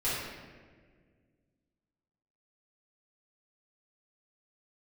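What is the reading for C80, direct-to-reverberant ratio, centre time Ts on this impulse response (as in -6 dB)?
1.5 dB, -11.5 dB, 96 ms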